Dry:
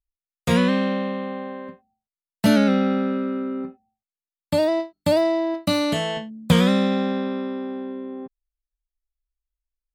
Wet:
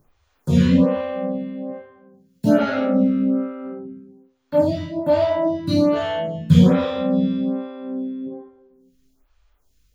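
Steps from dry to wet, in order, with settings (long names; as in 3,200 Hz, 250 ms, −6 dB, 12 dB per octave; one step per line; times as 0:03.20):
upward compression, threshold −29 dBFS
convolution reverb RT60 1.1 s, pre-delay 3 ms, DRR −10 dB
phaser with staggered stages 1.2 Hz
level −14 dB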